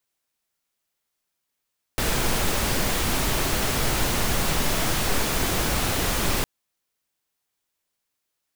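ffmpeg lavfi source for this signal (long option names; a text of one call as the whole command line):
ffmpeg -f lavfi -i "anoisesrc=color=pink:amplitude=0.363:duration=4.46:sample_rate=44100:seed=1" out.wav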